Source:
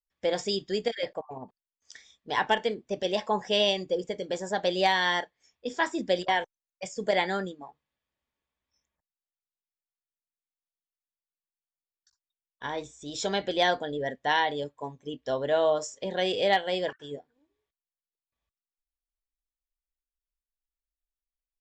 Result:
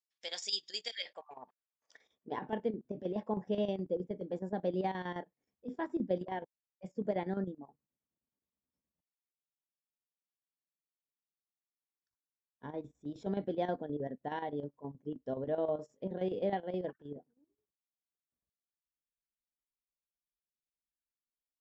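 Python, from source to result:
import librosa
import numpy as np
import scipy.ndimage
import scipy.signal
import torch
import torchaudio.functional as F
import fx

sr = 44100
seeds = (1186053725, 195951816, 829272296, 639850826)

y = fx.filter_sweep_bandpass(x, sr, from_hz=5200.0, to_hz=210.0, start_s=0.89, end_s=2.47, q=1.2)
y = fx.chopper(y, sr, hz=9.5, depth_pct=65, duty_pct=70)
y = F.gain(torch.from_numpy(y), 1.5).numpy()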